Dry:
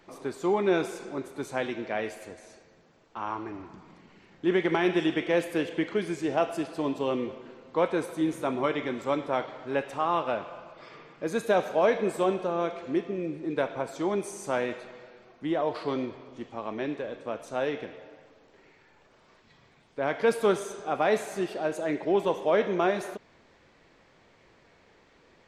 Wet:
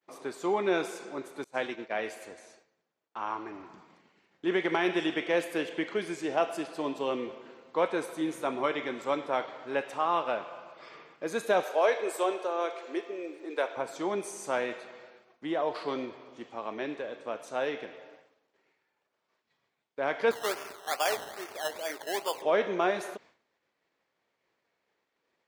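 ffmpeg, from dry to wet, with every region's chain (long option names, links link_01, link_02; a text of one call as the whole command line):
ffmpeg -i in.wav -filter_complex "[0:a]asettb=1/sr,asplit=3[link_01][link_02][link_03];[link_01]atrim=end=1.444[link_04];[link_02]atrim=start=1.44:end=1.97,asetpts=PTS-STARTPTS,afade=type=in:duration=0.004:curve=qsin,afade=type=out:start_time=0.526:duration=0.004:curve=qsin,agate=range=-33dB:threshold=-33dB:ratio=3:release=100:detection=peak,highpass=45[link_05];[link_03]atrim=start=1.966[link_06];[link_04][link_05]acrossfade=duration=0.004:curve1=hsin:curve2=qsin[link_07];[link_07][link_06]acrossfade=duration=0.004:curve1=qsin:curve2=hsin,asettb=1/sr,asplit=3[link_08][link_09][link_10];[link_08]atrim=end=11.634[link_11];[link_09]atrim=start=11.63:end=13.77,asetpts=PTS-STARTPTS,afade=type=in:duration=0.004:curve=qsin,afade=type=out:start_time=2.136:duration=0.004:curve=qsin,highpass=frequency=340:width=0.5412,highpass=frequency=340:width=1.3066,highshelf=frequency=10000:gain=10[link_12];[link_10]atrim=start=13.766[link_13];[link_11][link_12]acrossfade=duration=0.004:curve1=hsin:curve2=qsin[link_14];[link_14][link_13]acrossfade=duration=0.004:curve1=qsin:curve2=hsin,asettb=1/sr,asplit=3[link_15][link_16][link_17];[link_15]atrim=end=20.314[link_18];[link_16]atrim=start=20.31:end=22.42,asetpts=PTS-STARTPTS,afade=type=in:duration=0.004:curve=qsin,afade=type=out:start_time=2.106:duration=0.004:curve=qsin,highpass=610,acrusher=samples=15:mix=1:aa=0.000001:lfo=1:lforange=9:lforate=2.4,aeval=exprs='sgn(val(0))*max(abs(val(0))-0.001,0)':channel_layout=same[link_19];[link_17]atrim=start=22.416[link_20];[link_18][link_19]acrossfade=duration=0.004:curve1=hsin:curve2=qsin[link_21];[link_21][link_20]acrossfade=duration=0.004:curve1=qsin:curve2=hsin,agate=range=-33dB:threshold=-48dB:ratio=3:detection=peak,highpass=frequency=420:poles=1" out.wav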